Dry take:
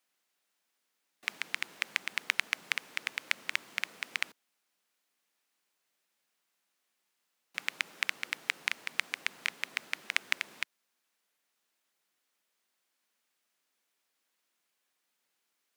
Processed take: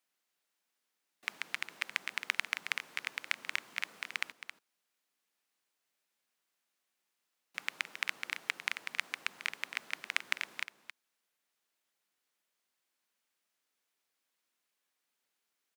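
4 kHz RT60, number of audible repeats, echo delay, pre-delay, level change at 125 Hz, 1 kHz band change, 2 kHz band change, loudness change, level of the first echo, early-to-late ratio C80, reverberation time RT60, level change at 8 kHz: no reverb audible, 1, 270 ms, no reverb audible, can't be measured, −1.0 dB, −2.5 dB, −3.0 dB, −10.5 dB, no reverb audible, no reverb audible, −3.5 dB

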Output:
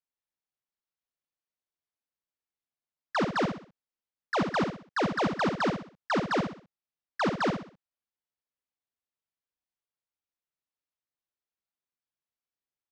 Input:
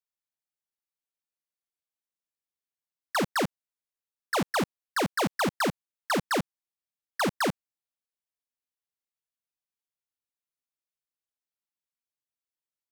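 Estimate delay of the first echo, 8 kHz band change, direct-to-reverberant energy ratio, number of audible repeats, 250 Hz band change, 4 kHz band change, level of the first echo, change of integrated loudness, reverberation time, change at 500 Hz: 63 ms, −11.5 dB, no reverb audible, 4, +1.0 dB, −4.0 dB, −6.5 dB, −0.5 dB, no reverb audible, +0.5 dB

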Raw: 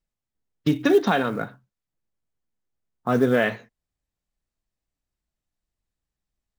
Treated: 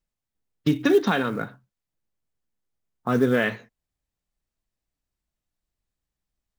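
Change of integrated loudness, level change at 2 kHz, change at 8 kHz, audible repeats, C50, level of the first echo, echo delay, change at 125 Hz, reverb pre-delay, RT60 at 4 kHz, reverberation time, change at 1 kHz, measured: −1.0 dB, −0.5 dB, can't be measured, no echo audible, no reverb audible, no echo audible, no echo audible, 0.0 dB, no reverb audible, no reverb audible, no reverb audible, −2.5 dB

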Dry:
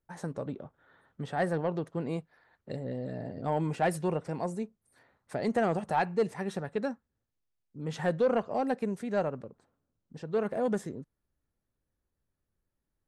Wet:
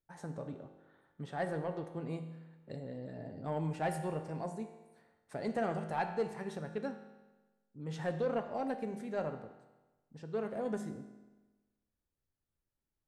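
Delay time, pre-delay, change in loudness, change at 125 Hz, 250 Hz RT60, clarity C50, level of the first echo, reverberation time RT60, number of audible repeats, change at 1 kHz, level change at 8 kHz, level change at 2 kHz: no echo audible, 5 ms, −6.5 dB, −5.0 dB, 1.2 s, 9.0 dB, no echo audible, 1.2 s, no echo audible, −6.5 dB, −7.0 dB, −6.5 dB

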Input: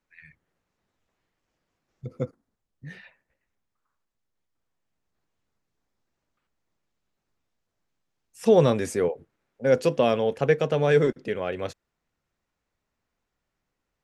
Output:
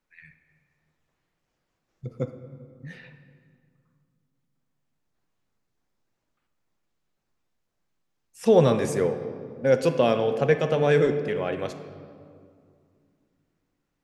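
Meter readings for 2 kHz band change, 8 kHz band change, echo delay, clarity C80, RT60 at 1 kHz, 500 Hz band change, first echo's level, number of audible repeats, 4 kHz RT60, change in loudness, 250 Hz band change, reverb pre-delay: +0.5 dB, 0.0 dB, no echo audible, 11.5 dB, 2.2 s, +0.5 dB, no echo audible, no echo audible, 1.4 s, +0.5 dB, +1.0 dB, 4 ms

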